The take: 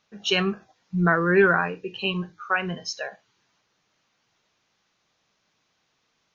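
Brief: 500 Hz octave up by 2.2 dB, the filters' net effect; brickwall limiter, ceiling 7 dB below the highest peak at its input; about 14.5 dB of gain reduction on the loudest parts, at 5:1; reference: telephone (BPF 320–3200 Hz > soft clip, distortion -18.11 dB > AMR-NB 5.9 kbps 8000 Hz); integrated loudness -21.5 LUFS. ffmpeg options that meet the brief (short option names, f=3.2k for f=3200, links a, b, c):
-af "equalizer=f=500:t=o:g=5,acompressor=threshold=-27dB:ratio=5,alimiter=limit=-21dB:level=0:latency=1,highpass=320,lowpass=3.2k,asoftclip=threshold=-25.5dB,volume=16dB" -ar 8000 -c:a libopencore_amrnb -b:a 5900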